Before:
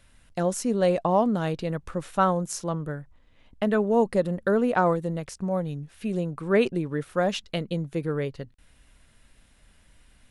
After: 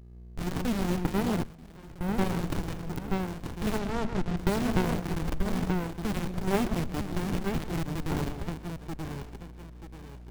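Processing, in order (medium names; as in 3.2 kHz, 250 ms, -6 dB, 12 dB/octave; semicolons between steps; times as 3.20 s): send-on-delta sampling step -25.5 dBFS; thinning echo 935 ms, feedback 32%, high-pass 580 Hz, level -6 dB; hum 60 Hz, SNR 24 dB; dynamic bell 650 Hz, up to -5 dB, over -32 dBFS, Q 0.73; in parallel at -9 dB: short-mantissa float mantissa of 2-bit; 3.78–4.37 s: on the sum: distance through air 150 m; on a send at -11.5 dB: reverberation RT60 0.25 s, pre-delay 115 ms; 1.43–2.01 s: on the sum: level held to a coarse grid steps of 21 dB; sliding maximum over 65 samples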